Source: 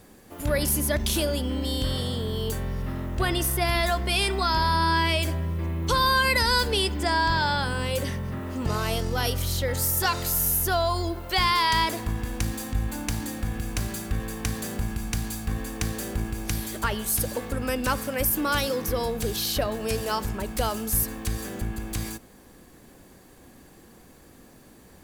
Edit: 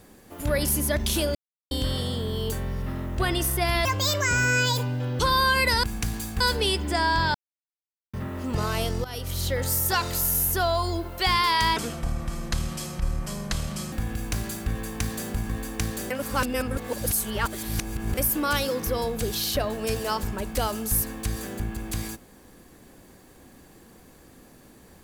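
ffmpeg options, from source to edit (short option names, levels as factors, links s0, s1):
-filter_complex "[0:a]asplit=15[s0][s1][s2][s3][s4][s5][s6][s7][s8][s9][s10][s11][s12][s13][s14];[s0]atrim=end=1.35,asetpts=PTS-STARTPTS,afade=t=out:st=1.346:d=0.004:c=hsin[s15];[s1]atrim=start=1.35:end=1.71,asetpts=PTS-STARTPTS,volume=0[s16];[s2]atrim=start=1.71:end=3.854,asetpts=PTS-STARTPTS,afade=t=in:d=0.004:c=hsin[s17];[s3]atrim=start=3.85:end=5.88,asetpts=PTS-STARTPTS,asetrate=66591,aresample=44100[s18];[s4]atrim=start=5.876:end=6.522[s19];[s5]atrim=start=14.938:end=15.512[s20];[s6]atrim=start=6.518:end=7.46,asetpts=PTS-STARTPTS,afade=t=out:st=0.938:d=0.004:c=hsin[s21];[s7]atrim=start=7.46:end=8.25,asetpts=PTS-STARTPTS,volume=0[s22];[s8]atrim=start=8.25:end=9.16,asetpts=PTS-STARTPTS,afade=t=in:d=0.004:c=hsin,afade=t=out:st=0.906:d=0.004:c=hsin:silence=0.158489[s23];[s9]atrim=start=9.16:end=11.884,asetpts=PTS-STARTPTS,afade=t=in:d=0.42:silence=0.158489[s24];[s10]atrim=start=11.88:end=13.37,asetpts=PTS-STARTPTS,asetrate=30429,aresample=44100,atrim=end_sample=95230,asetpts=PTS-STARTPTS[s25];[s11]atrim=start=13.366:end=14.942[s26];[s12]atrim=start=15.508:end=16.122[s27];[s13]atrim=start=16.118:end=18.192,asetpts=PTS-STARTPTS,areverse[s28];[s14]atrim=start=18.188[s29];[s15][s16][s17]concat=n=3:v=0:a=1[s30];[s30][s18]acrossfade=d=0.004:c1=hsin:c2=hsin[s31];[s31][s19]acrossfade=d=0.004:c1=hsin:c2=hsin[s32];[s32][s20]acrossfade=d=0.004:c1=hsin:c2=hsin[s33];[s21][s22][s23][s24]concat=n=4:v=0:a=1[s34];[s33][s34]acrossfade=d=0.004:c1=hsin:c2=hsin[s35];[s35][s25]acrossfade=d=0.004:c1=hsin:c2=hsin[s36];[s36][s26]acrossfade=d=0.004:c1=hsin:c2=hsin[s37];[s37][s27]acrossfade=d=0.004:c1=hsin:c2=hsin[s38];[s38][s28]acrossfade=d=0.004:c1=hsin:c2=hsin[s39];[s39][s29]acrossfade=d=0.004:c1=hsin:c2=hsin"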